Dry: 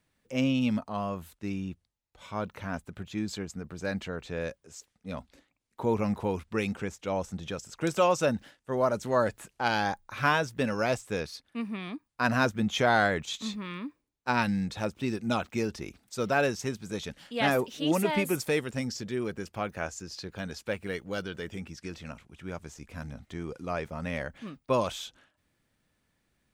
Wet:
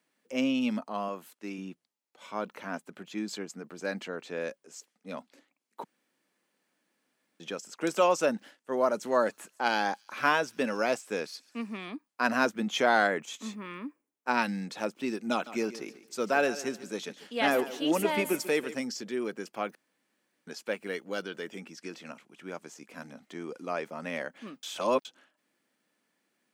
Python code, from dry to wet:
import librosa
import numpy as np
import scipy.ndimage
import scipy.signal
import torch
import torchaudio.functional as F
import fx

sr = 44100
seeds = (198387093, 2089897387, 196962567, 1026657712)

y = fx.highpass(x, sr, hz=230.0, slope=6, at=(1.08, 1.58))
y = fx.echo_wet_highpass(y, sr, ms=138, feedback_pct=78, hz=5300.0, wet_db=-19.5, at=(8.99, 11.85), fade=0.02)
y = fx.peak_eq(y, sr, hz=4100.0, db=-10.0, octaves=0.77, at=(13.07, 14.31))
y = fx.echo_feedback(y, sr, ms=143, feedback_pct=34, wet_db=-15, at=(15.32, 18.76))
y = fx.edit(y, sr, fx.room_tone_fill(start_s=5.84, length_s=1.56),
    fx.room_tone_fill(start_s=19.75, length_s=0.72),
    fx.reverse_span(start_s=24.63, length_s=0.42), tone=tone)
y = scipy.signal.sosfilt(scipy.signal.butter(4, 220.0, 'highpass', fs=sr, output='sos'), y)
y = fx.notch(y, sr, hz=3700.0, q=20.0)